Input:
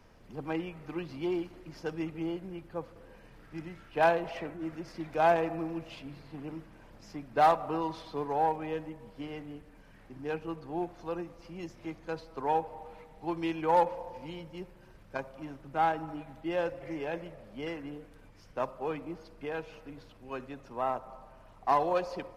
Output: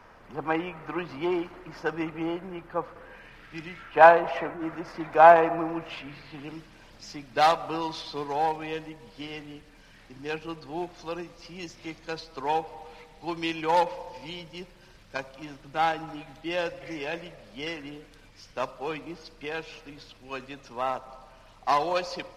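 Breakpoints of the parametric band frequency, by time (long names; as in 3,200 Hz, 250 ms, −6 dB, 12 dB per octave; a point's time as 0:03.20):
parametric band +13.5 dB 2.4 octaves
0:02.89 1,200 Hz
0:03.63 3,500 Hz
0:04.00 1,100 Hz
0:05.74 1,100 Hz
0:06.58 4,500 Hz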